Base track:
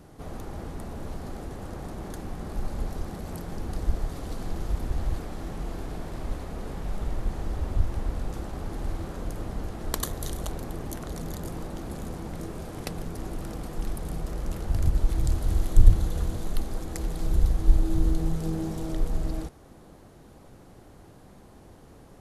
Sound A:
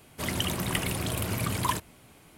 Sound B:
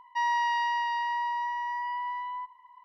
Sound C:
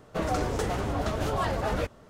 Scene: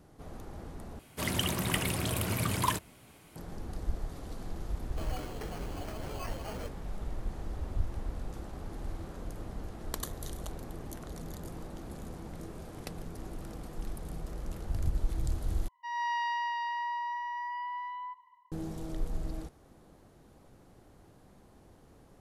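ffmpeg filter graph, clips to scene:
-filter_complex "[0:a]volume=-7.5dB[a];[3:a]acrusher=samples=12:mix=1:aa=0.000001[b];[2:a]dynaudnorm=f=110:g=5:m=10dB[c];[a]asplit=3[d][e][f];[d]atrim=end=0.994[g];[1:a]atrim=end=2.37,asetpts=PTS-STARTPTS,volume=-1.5dB[h];[e]atrim=start=3.356:end=15.684[i];[c]atrim=end=2.84,asetpts=PTS-STARTPTS,volume=-14.5dB[j];[f]atrim=start=18.516[k];[b]atrim=end=2.09,asetpts=PTS-STARTPTS,volume=-13.5dB,afade=t=in:d=0.004:c=hsin,afade=t=out:st=2.086:d=0.004:c=hsin,adelay=4820[l];[g][h]acrossfade=d=0.004:c1=hsin:c2=hsin[m];[m][i]acrossfade=d=0.004:c1=hsin:c2=hsin[n];[n][j]acrossfade=d=0.004:c1=hsin:c2=hsin[o];[o][k]acrossfade=d=0.004:c1=hsin:c2=hsin[p];[p][l]amix=inputs=2:normalize=0"

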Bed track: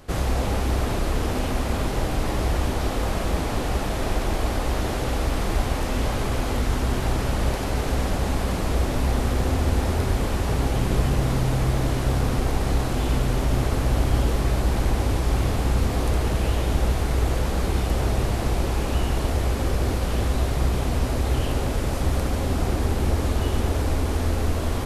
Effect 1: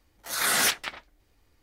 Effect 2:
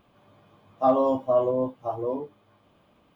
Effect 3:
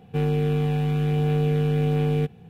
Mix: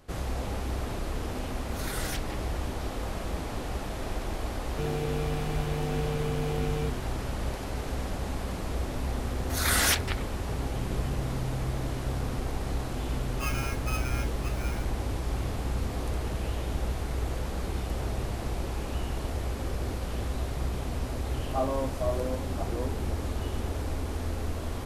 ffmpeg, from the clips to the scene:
-filter_complex "[1:a]asplit=2[a][b];[2:a]asplit=2[c][d];[0:a]volume=-9dB[e];[a]alimiter=limit=-14dB:level=0:latency=1:release=71[f];[3:a]bass=f=250:g=-6,treble=f=4k:g=3[g];[c]aeval=exprs='val(0)*sgn(sin(2*PI*1900*n/s))':c=same[h];[f]atrim=end=1.62,asetpts=PTS-STARTPTS,volume=-12dB,afade=t=in:d=0.004:c=hsin,afade=t=out:st=1.616:d=0.004:c=hsin,adelay=1460[i];[g]atrim=end=2.49,asetpts=PTS-STARTPTS,volume=-6dB,afade=t=in:d=0.004:c=hsin,afade=t=out:st=2.486:d=0.004:c=hsin,adelay=4640[j];[b]atrim=end=1.62,asetpts=PTS-STARTPTS,volume=-1.5dB,afade=t=in:d=0.004:c=hsin,afade=t=out:st=1.616:d=0.004:c=hsin,adelay=9240[k];[h]atrim=end=3.15,asetpts=PTS-STARTPTS,volume=-16dB,afade=t=in:d=0.004:c=hsin,afade=t=out:st=3.146:d=0.004:c=hsin,adelay=12580[l];[d]atrim=end=3.15,asetpts=PTS-STARTPTS,volume=-9dB,afade=t=in:d=0.004:c=hsin,afade=t=out:st=3.146:d=0.004:c=hsin,adelay=20720[m];[e][i][j][k][l][m]amix=inputs=6:normalize=0"

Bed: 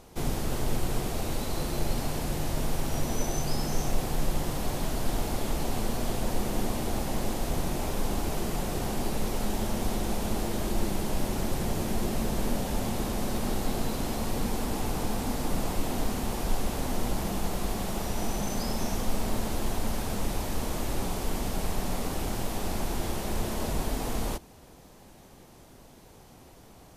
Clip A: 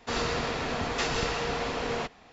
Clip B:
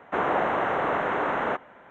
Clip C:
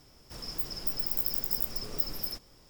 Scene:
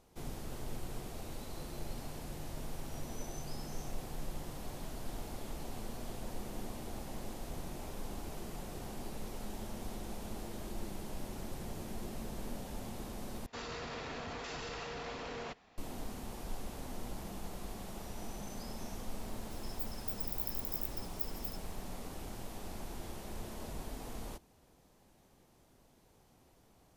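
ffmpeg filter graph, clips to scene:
-filter_complex "[0:a]volume=-13.5dB[a];[1:a]alimiter=level_in=1dB:limit=-24dB:level=0:latency=1:release=15,volume=-1dB[b];[3:a]highshelf=f=7.4k:g=9[c];[a]asplit=2[d][e];[d]atrim=end=13.464[f];[b]atrim=end=2.32,asetpts=PTS-STARTPTS,volume=-9.5dB[g];[e]atrim=start=15.776[h];[c]atrim=end=2.69,asetpts=PTS-STARTPTS,volume=-17dB,afade=t=in:d=0.004:c=hsin,afade=t=out:st=2.686:d=0.004:c=hsin,adelay=19210[i];[f][g]acrossfade=d=0.004:c1=hsin:c2=hsin[j];[j][h]acrossfade=d=0.004:c1=hsin:c2=hsin[k];[k][i]amix=inputs=2:normalize=0"

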